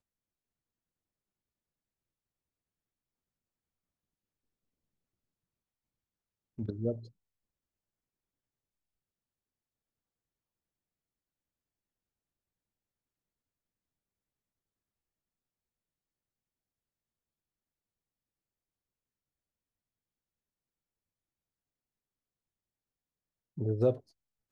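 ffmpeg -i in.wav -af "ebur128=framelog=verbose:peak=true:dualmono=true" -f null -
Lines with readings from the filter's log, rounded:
Integrated loudness:
  I:         -30.9 LUFS
  Threshold: -41.7 LUFS
Loudness range:
  LRA:        12.6 LU
  Threshold: -59.8 LUFS
  LRA low:   -47.8 LUFS
  LRA high:  -35.2 LUFS
True peak:
  Peak:      -15.5 dBFS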